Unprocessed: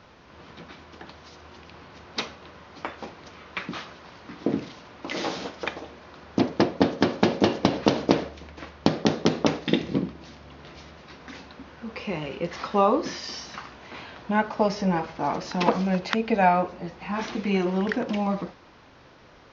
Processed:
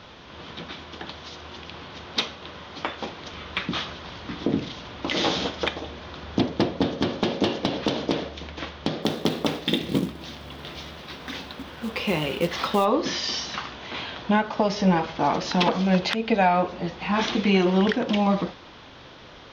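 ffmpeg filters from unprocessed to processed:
ffmpeg -i in.wav -filter_complex "[0:a]asettb=1/sr,asplit=3[link_01][link_02][link_03];[link_01]atrim=end=3.334[link_04];[link_02]atrim=start=3.33:end=7.2,asetpts=PTS-STARTPTS,afade=type=in:duration=0.004:curve=qsin,afade=type=out:start_time=3.866:duration=0.004:curve=qsin,lowshelf=frequency=100:gain=11.5[link_05];[link_03]atrim=start=7.196[link_06];[link_04][link_05]acrossfade=duration=0.004:curve1=hsin:curve2=qsin[link_07];[link_07][link_06]acrossfade=duration=0.004:curve1=qsin:curve2=hsin,asplit=3[link_08][link_09][link_10];[link_08]afade=type=out:start_time=9.02:duration=0.02[link_11];[link_09]acrusher=bits=5:mode=log:mix=0:aa=0.000001,afade=type=in:start_time=9.02:duration=0.02,afade=type=out:start_time=12.84:duration=0.02[link_12];[link_10]afade=type=in:start_time=12.84:duration=0.02[link_13];[link_11][link_12][link_13]amix=inputs=3:normalize=0,equalizer=frequency=3400:width=2.8:gain=9,acontrast=39,alimiter=limit=-11dB:level=0:latency=1:release=316" out.wav

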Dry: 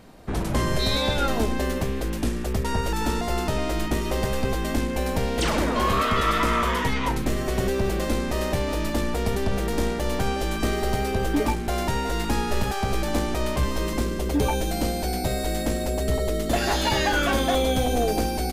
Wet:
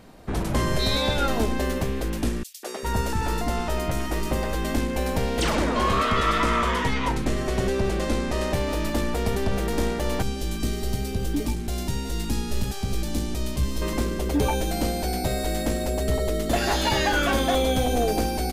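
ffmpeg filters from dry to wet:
ffmpeg -i in.wav -filter_complex "[0:a]asettb=1/sr,asplit=3[link_01][link_02][link_03];[link_01]atrim=end=2.434[link_04];[link_02]atrim=start=2.43:end=4.54,asetpts=PTS-STARTPTS,afade=type=in:duration=0.004:curve=qsin,afade=type=out:start_time=2.106:duration=0.004:curve=qsin,acrossover=split=320|3600[link_05][link_06][link_07];[link_06]adelay=200[link_08];[link_05]adelay=400[link_09];[link_09][link_08][link_07]amix=inputs=3:normalize=0,atrim=end_sample=93051[link_10];[link_03]atrim=start=4.536[link_11];[link_04][link_10]acrossfade=duration=0.004:curve1=hsin:curve2=qsin[link_12];[link_12][link_11]acrossfade=duration=0.004:curve1=qsin:curve2=hsin,asettb=1/sr,asplit=3[link_13][link_14][link_15];[link_13]atrim=end=5.554[link_16];[link_14]atrim=start=5.55:end=8.54,asetpts=PTS-STARTPTS,afade=type=in:duration=0.004:curve=qsin,afade=type=out:start_time=2.986:duration=0.004:curve=qsin,lowpass=10000[link_17];[link_15]atrim=start=8.536[link_18];[link_16][link_17]acrossfade=duration=0.004:curve1=hsin:curve2=qsin[link_19];[link_19][link_18]acrossfade=duration=0.004:curve1=qsin:curve2=hsin,asettb=1/sr,asplit=3[link_20][link_21][link_22];[link_20]atrim=end=10.224[link_23];[link_21]atrim=start=10.22:end=13.82,asetpts=PTS-STARTPTS,afade=type=in:duration=0.004:curve=qsin,afade=type=out:start_time=3.596:duration=0.004:curve=qsin,acrossover=split=330|3000[link_24][link_25][link_26];[link_25]acompressor=threshold=-50dB:ratio=2:attack=3.2:release=140:knee=2.83:detection=peak[link_27];[link_24][link_27][link_26]amix=inputs=3:normalize=0[link_28];[link_22]atrim=start=13.816[link_29];[link_23][link_28]acrossfade=duration=0.004:curve1=hsin:curve2=qsin[link_30];[link_30][link_29]acrossfade=duration=0.004:curve1=qsin:curve2=hsin" out.wav

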